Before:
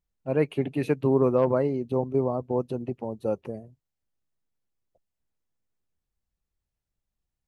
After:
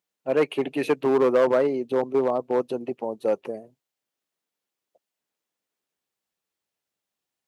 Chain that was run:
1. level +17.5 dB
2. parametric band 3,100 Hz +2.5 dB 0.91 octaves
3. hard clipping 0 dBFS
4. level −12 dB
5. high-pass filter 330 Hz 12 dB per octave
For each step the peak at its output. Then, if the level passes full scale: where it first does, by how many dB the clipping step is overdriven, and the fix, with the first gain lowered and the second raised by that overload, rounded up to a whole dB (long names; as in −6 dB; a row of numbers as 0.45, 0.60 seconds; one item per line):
+7.5, +7.5, 0.0, −12.0, −9.0 dBFS
step 1, 7.5 dB
step 1 +9.5 dB, step 4 −4 dB